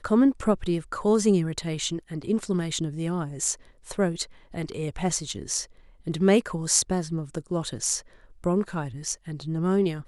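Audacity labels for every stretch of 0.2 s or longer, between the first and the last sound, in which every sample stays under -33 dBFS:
3.540000	3.900000	silence
4.240000	4.540000	silence
5.640000	6.070000	silence
8.000000	8.440000	silence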